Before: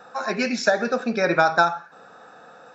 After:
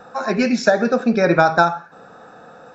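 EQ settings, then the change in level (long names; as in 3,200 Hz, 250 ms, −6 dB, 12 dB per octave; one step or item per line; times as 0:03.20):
spectral tilt −2.5 dB per octave
high-shelf EQ 6,100 Hz +9 dB
+3.0 dB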